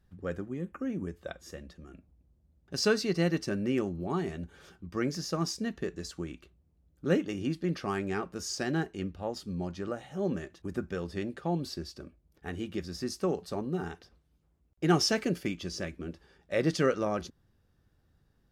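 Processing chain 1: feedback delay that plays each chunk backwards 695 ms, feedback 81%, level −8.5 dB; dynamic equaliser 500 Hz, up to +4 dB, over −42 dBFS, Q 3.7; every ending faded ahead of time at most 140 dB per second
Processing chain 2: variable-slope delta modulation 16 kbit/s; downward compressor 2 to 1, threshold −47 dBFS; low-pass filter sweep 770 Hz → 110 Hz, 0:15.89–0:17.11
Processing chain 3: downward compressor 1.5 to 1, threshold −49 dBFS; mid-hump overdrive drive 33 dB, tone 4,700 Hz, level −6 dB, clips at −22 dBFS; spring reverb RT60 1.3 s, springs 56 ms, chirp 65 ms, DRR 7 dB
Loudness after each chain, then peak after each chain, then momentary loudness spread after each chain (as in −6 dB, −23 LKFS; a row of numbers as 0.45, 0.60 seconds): −32.5, −43.5, −30.5 LKFS; −11.5, −25.0, −20.0 dBFS; 12, 11, 8 LU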